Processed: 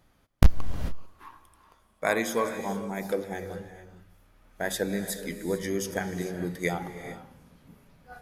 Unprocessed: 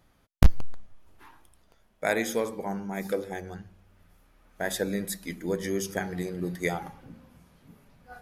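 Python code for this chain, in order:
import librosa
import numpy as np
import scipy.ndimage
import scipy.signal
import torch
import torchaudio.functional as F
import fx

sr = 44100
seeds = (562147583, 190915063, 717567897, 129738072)

y = fx.peak_eq(x, sr, hz=1100.0, db=13.5, octaves=0.21, at=(0.58, 2.46))
y = fx.rev_gated(y, sr, seeds[0], gate_ms=470, shape='rising', drr_db=10.0)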